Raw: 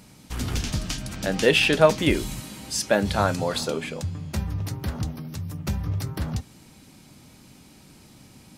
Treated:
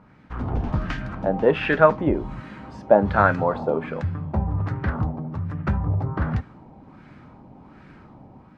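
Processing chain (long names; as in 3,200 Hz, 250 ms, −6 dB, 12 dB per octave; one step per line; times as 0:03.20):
automatic gain control gain up to 6.5 dB
auto-filter low-pass sine 1.3 Hz 790–1,700 Hz
level −2.5 dB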